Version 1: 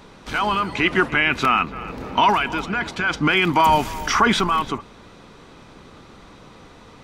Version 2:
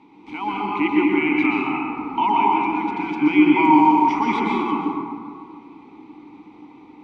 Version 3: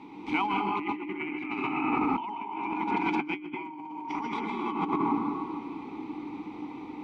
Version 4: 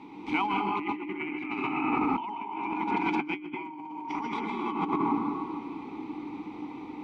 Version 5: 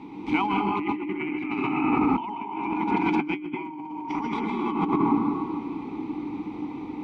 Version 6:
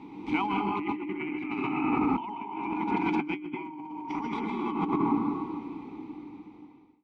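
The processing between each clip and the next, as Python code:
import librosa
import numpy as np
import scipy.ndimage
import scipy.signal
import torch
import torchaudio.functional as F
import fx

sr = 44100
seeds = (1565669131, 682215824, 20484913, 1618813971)

y1 = fx.vowel_filter(x, sr, vowel='u')
y1 = fx.rev_plate(y1, sr, seeds[0], rt60_s=2.1, hf_ratio=0.4, predelay_ms=110, drr_db=-3.5)
y1 = F.gain(torch.from_numpy(y1), 6.5).numpy()
y2 = fx.over_compress(y1, sr, threshold_db=-29.0, ratio=-1.0)
y2 = F.gain(torch.from_numpy(y2), -3.5).numpy()
y3 = y2
y4 = fx.low_shelf(y3, sr, hz=340.0, db=8.0)
y4 = F.gain(torch.from_numpy(y4), 1.5).numpy()
y5 = fx.fade_out_tail(y4, sr, length_s=1.71)
y5 = F.gain(torch.from_numpy(y5), -4.0).numpy()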